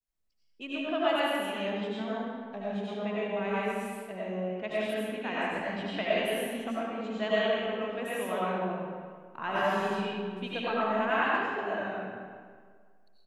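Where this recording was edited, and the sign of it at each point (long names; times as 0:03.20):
no edit point found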